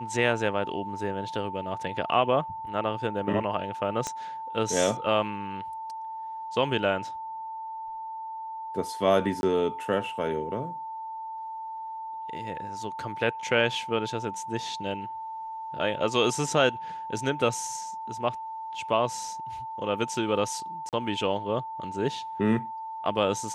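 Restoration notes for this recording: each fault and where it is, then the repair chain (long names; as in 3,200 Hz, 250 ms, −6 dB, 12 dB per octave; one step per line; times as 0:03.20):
whistle 890 Hz −34 dBFS
0:04.07: click −17 dBFS
0:09.41–0:09.43: drop-out 21 ms
0:20.89–0:20.93: drop-out 38 ms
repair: click removal
notch filter 890 Hz, Q 30
repair the gap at 0:09.41, 21 ms
repair the gap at 0:20.89, 38 ms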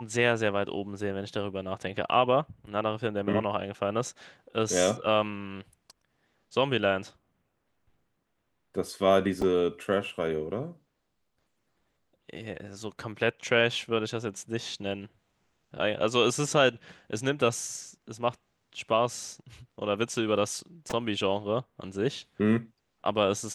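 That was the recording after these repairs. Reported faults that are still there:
0:04.07: click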